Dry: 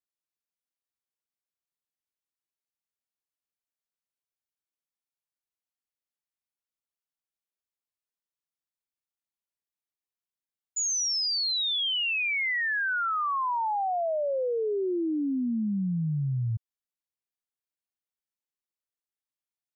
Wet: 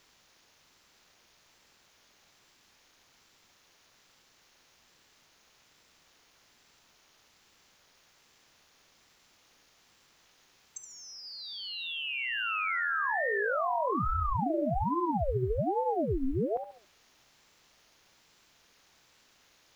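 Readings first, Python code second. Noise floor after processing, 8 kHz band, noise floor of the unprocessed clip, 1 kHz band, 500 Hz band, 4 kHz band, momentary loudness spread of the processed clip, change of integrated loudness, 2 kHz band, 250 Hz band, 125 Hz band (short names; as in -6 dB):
-65 dBFS, n/a, under -85 dBFS, -1.0 dB, -1.0 dB, -11.0 dB, 14 LU, -4.0 dB, -3.5 dB, -4.0 dB, -4.5 dB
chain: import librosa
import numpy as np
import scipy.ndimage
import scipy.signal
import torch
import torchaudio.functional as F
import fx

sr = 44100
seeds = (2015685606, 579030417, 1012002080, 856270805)

p1 = fx.bin_compress(x, sr, power=0.6)
p2 = fx.env_lowpass_down(p1, sr, base_hz=2100.0, full_db=-30.5)
p3 = p2 + fx.echo_feedback(p2, sr, ms=71, feedback_pct=36, wet_db=-9, dry=0)
p4 = fx.quant_dither(p3, sr, seeds[0], bits=12, dither='triangular')
y = fx.ring_lfo(p4, sr, carrier_hz=410.0, swing_pct=70, hz=1.2)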